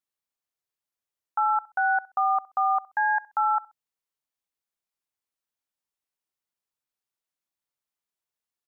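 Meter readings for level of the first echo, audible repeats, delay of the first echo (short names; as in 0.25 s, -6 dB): -22.0 dB, 2, 65 ms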